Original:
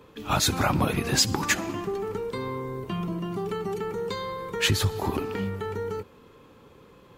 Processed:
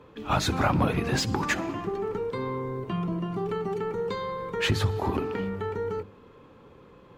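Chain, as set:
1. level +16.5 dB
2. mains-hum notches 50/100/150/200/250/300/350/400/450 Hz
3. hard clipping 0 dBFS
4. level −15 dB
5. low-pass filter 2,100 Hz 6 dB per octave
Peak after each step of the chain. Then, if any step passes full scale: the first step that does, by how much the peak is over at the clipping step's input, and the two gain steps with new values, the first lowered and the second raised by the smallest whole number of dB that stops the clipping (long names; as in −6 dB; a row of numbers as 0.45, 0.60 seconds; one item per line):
+8.5, +8.5, 0.0, −15.0, −15.0 dBFS
step 1, 8.5 dB
step 1 +7.5 dB, step 4 −6 dB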